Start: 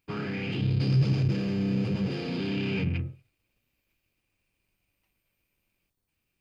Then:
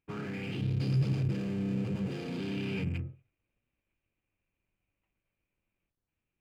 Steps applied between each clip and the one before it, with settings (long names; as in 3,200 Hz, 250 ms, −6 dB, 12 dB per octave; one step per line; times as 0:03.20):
adaptive Wiener filter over 9 samples
level −5 dB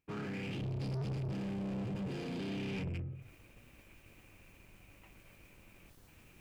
reversed playback
upward compression, threshold −37 dBFS
reversed playback
soft clipping −35 dBFS, distortion −8 dB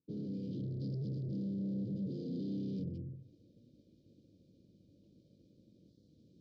inverse Chebyshev band-stop filter 780–2,800 Hz, stop band 40 dB
loudspeaker in its box 160–3,800 Hz, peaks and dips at 400 Hz −8 dB, 1,800 Hz −10 dB, 2,700 Hz +9 dB
level +3.5 dB